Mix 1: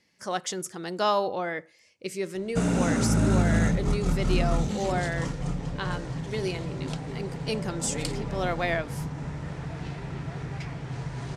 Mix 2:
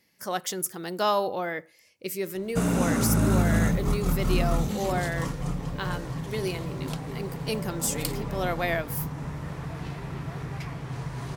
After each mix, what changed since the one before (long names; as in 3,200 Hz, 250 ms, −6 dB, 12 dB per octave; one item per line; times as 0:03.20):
background: add parametric band 1,100 Hz +7.5 dB 0.2 octaves
master: remove low-pass filter 8,700 Hz 24 dB per octave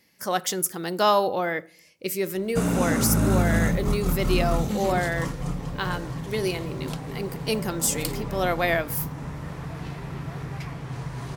speech +3.5 dB
reverb: on, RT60 0.55 s